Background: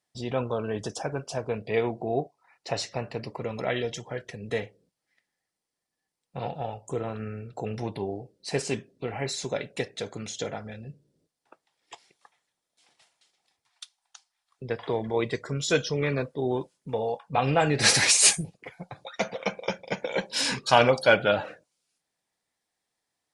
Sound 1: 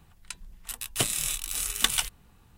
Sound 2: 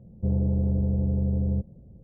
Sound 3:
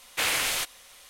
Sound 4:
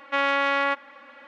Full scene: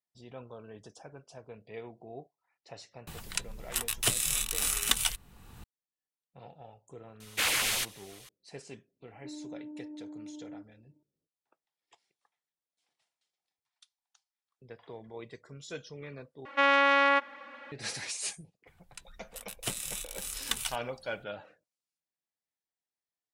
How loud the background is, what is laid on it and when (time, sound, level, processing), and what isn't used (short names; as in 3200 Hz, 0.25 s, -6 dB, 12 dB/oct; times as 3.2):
background -17.5 dB
3.07 add 1 -0.5 dB + three-band squash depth 70%
7.2 add 3 -1.5 dB + LFO notch saw down 7.1 Hz 240–2000 Hz
9 add 2 -15.5 dB + vocoder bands 8, saw 301 Hz
16.45 replace with 4 -0.5 dB
18.67 add 1 -8.5 dB